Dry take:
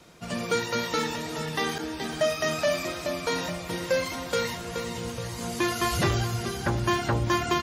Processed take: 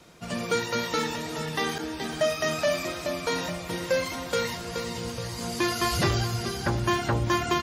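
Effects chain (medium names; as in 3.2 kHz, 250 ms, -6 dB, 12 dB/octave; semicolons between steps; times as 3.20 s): 4.52–6.77 s: peaking EQ 4.8 kHz +6 dB 0.26 oct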